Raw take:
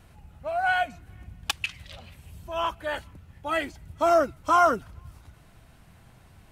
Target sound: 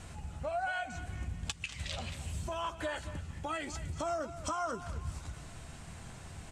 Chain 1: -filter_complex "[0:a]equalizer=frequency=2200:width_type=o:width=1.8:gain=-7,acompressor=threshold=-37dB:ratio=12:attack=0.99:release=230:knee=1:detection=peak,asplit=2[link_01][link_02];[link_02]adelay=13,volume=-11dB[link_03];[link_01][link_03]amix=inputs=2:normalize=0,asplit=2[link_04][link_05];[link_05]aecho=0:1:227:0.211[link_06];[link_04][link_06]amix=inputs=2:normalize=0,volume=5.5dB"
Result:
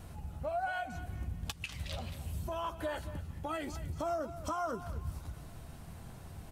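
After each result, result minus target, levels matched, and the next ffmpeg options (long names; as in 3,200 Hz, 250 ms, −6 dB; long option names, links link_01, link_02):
8,000 Hz band −6.0 dB; 2,000 Hz band −3.0 dB
-filter_complex "[0:a]equalizer=frequency=2200:width_type=o:width=1.8:gain=-7,acompressor=threshold=-37dB:ratio=12:attack=0.99:release=230:knee=1:detection=peak,lowpass=frequency=7700:width_type=q:width=2.9,asplit=2[link_01][link_02];[link_02]adelay=13,volume=-11dB[link_03];[link_01][link_03]amix=inputs=2:normalize=0,asplit=2[link_04][link_05];[link_05]aecho=0:1:227:0.211[link_06];[link_04][link_06]amix=inputs=2:normalize=0,volume=5.5dB"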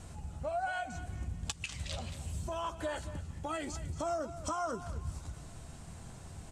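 2,000 Hz band −2.5 dB
-filter_complex "[0:a]acompressor=threshold=-37dB:ratio=12:attack=0.99:release=230:knee=1:detection=peak,lowpass=frequency=7700:width_type=q:width=2.9,asplit=2[link_01][link_02];[link_02]adelay=13,volume=-11dB[link_03];[link_01][link_03]amix=inputs=2:normalize=0,asplit=2[link_04][link_05];[link_05]aecho=0:1:227:0.211[link_06];[link_04][link_06]amix=inputs=2:normalize=0,volume=5.5dB"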